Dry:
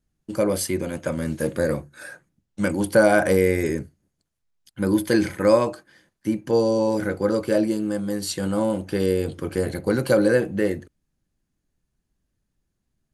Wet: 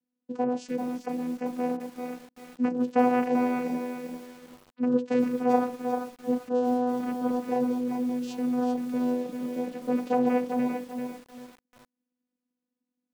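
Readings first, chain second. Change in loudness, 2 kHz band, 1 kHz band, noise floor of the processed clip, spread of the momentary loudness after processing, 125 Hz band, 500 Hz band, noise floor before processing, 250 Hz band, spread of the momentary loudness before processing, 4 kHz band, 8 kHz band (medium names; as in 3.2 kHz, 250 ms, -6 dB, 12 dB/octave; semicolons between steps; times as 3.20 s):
-6.0 dB, -12.5 dB, +1.5 dB, under -85 dBFS, 13 LU, -18.5 dB, -8.0 dB, -78 dBFS, -2.5 dB, 10 LU, under -10 dB, under -15 dB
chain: vocoder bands 8, saw 248 Hz; bit-crushed delay 392 ms, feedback 35%, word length 7-bit, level -5.5 dB; trim -5 dB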